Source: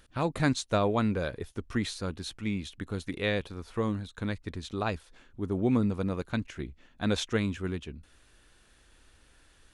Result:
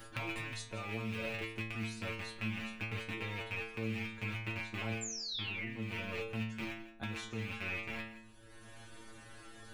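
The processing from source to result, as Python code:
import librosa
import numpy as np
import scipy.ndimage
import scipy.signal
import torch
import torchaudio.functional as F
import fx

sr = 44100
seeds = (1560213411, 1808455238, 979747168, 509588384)

y = fx.rattle_buzz(x, sr, strikes_db=-42.0, level_db=-15.0)
y = fx.high_shelf(y, sr, hz=2300.0, db=fx.steps((0.0, -7.0), (1.81, -12.0)))
y = fx.spec_paint(y, sr, seeds[0], shape='fall', start_s=5.01, length_s=0.69, low_hz=1700.0, high_hz=7500.0, level_db=-30.0)
y = fx.over_compress(y, sr, threshold_db=-31.0, ratio=-1.0)
y = fx.high_shelf(y, sr, hz=8200.0, db=8.0)
y = fx.stiff_resonator(y, sr, f0_hz=110.0, decay_s=0.64, stiffness=0.002)
y = y + 10.0 ** (-18.0 / 20.0) * np.pad(y, (int(168 * sr / 1000.0), 0))[:len(y)]
y = fx.band_squash(y, sr, depth_pct=70)
y = y * librosa.db_to_amplitude(5.0)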